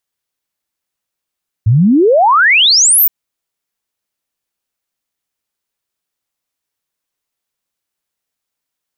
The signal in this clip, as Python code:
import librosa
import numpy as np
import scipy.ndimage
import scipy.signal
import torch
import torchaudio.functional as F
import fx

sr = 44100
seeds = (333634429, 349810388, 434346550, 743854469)

y = fx.ess(sr, length_s=1.42, from_hz=100.0, to_hz=16000.0, level_db=-5.5)